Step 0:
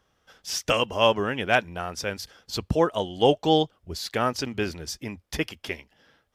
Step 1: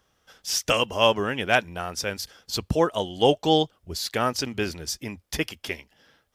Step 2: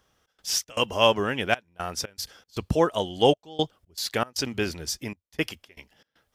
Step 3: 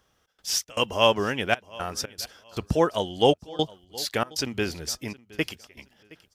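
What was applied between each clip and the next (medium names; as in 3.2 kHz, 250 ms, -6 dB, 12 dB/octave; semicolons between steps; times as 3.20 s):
treble shelf 4.6 kHz +6.5 dB
trance gate "xx.xx.xxxxxx.." 117 bpm -24 dB
feedback delay 718 ms, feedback 25%, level -22 dB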